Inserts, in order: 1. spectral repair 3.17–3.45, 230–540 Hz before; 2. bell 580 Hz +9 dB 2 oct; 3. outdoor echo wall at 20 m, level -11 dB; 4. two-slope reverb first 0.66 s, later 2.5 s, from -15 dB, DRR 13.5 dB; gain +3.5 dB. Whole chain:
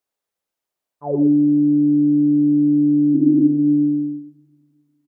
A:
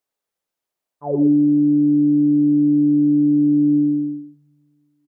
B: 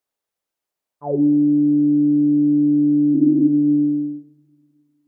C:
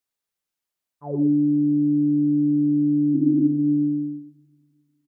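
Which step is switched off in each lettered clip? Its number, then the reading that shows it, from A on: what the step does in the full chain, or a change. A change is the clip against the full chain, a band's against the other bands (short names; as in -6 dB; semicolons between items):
1, crest factor change -2.0 dB; 3, echo-to-direct -9.0 dB to -13.5 dB; 2, loudness change -4.5 LU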